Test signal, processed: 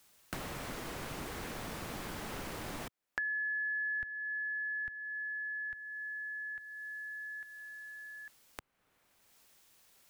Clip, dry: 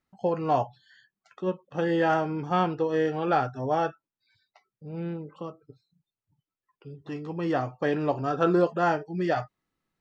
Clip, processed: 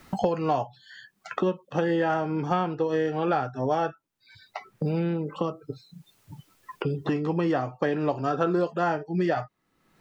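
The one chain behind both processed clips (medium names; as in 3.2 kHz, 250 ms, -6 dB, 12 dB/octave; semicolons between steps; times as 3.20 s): three bands compressed up and down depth 100%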